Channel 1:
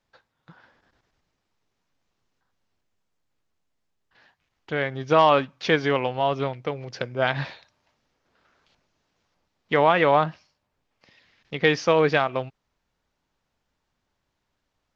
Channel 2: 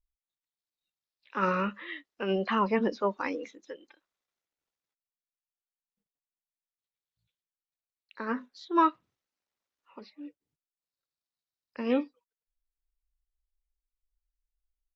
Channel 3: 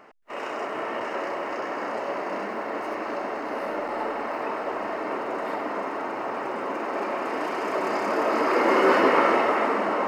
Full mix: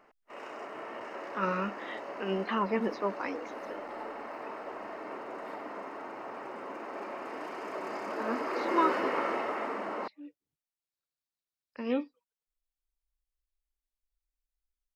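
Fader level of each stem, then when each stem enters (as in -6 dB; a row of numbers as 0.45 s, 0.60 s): mute, -3.5 dB, -11.5 dB; mute, 0.00 s, 0.00 s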